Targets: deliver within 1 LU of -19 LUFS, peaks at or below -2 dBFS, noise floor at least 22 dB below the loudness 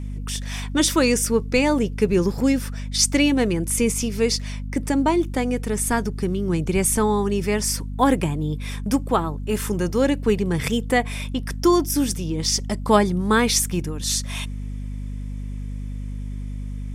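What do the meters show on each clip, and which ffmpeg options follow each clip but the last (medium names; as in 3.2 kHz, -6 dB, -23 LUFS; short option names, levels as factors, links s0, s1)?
hum 50 Hz; highest harmonic 250 Hz; hum level -27 dBFS; loudness -21.5 LUFS; peak level -3.5 dBFS; loudness target -19.0 LUFS
-> -af "bandreject=f=50:t=h:w=4,bandreject=f=100:t=h:w=4,bandreject=f=150:t=h:w=4,bandreject=f=200:t=h:w=4,bandreject=f=250:t=h:w=4"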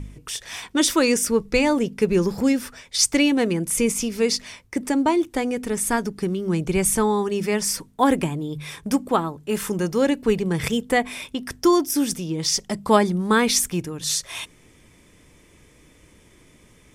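hum not found; loudness -22.0 LUFS; peak level -3.5 dBFS; loudness target -19.0 LUFS
-> -af "volume=1.41,alimiter=limit=0.794:level=0:latency=1"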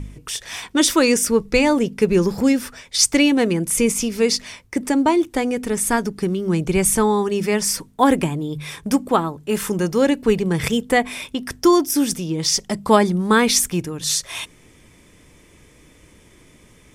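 loudness -19.0 LUFS; peak level -2.0 dBFS; noise floor -51 dBFS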